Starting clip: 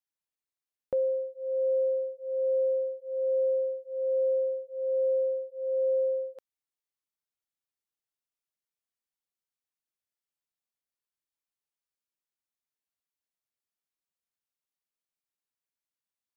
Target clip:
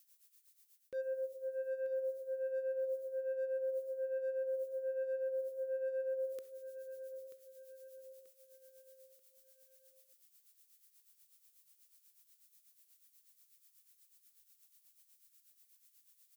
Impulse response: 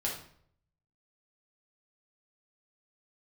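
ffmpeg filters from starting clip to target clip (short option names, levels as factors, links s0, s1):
-filter_complex "[0:a]crystalizer=i=9.5:c=0,asplit=2[s0][s1];[1:a]atrim=start_sample=2205,adelay=17[s2];[s1][s2]afir=irnorm=-1:irlink=0,volume=0.0596[s3];[s0][s3]amix=inputs=2:normalize=0,asoftclip=type=tanh:threshold=0.0841,firequalizer=gain_entry='entry(220,0);entry(430,7);entry(730,-20);entry(1200,2)':delay=0.05:min_phase=1,asoftclip=type=hard:threshold=0.0596,tremolo=f=8.2:d=0.74,areverse,acompressor=threshold=0.01:ratio=10,areverse,aecho=1:1:935|1870|2805|3740:0.282|0.121|0.0521|0.0224,volume=1.5"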